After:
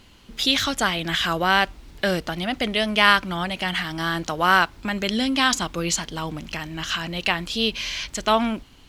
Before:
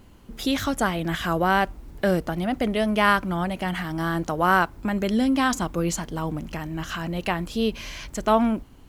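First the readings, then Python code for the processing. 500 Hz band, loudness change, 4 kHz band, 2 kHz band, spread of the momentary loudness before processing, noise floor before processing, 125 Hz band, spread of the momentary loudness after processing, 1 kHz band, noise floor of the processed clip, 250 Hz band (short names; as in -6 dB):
-1.5 dB, +2.0 dB, +11.0 dB, +5.0 dB, 10 LU, -48 dBFS, -3.0 dB, 10 LU, +1.0 dB, -50 dBFS, -2.5 dB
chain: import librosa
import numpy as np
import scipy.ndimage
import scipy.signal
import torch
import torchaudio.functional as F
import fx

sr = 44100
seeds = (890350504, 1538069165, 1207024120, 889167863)

y = fx.peak_eq(x, sr, hz=3700.0, db=14.5, octaves=2.4)
y = y * 10.0 ** (-3.0 / 20.0)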